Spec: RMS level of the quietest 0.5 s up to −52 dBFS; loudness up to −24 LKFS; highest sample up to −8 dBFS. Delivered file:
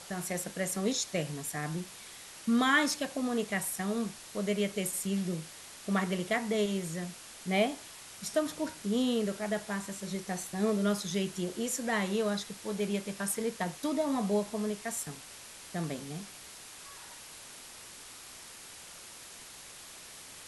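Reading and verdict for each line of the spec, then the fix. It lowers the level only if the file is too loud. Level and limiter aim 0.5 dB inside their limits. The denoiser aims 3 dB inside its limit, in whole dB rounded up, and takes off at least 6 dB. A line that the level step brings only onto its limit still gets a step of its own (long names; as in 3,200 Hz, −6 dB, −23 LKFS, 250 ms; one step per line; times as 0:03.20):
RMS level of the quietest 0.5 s −49 dBFS: out of spec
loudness −32.5 LKFS: in spec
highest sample −15.0 dBFS: in spec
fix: broadband denoise 6 dB, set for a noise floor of −49 dBFS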